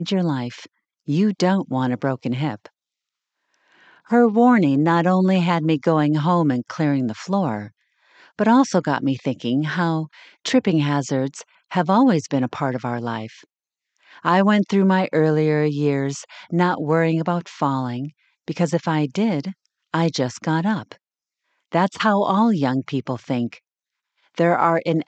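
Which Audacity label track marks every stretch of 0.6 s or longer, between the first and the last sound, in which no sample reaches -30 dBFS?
2.660000	4.110000	silence
7.660000	8.390000	silence
13.310000	14.250000	silence
20.920000	21.720000	silence
23.530000	24.380000	silence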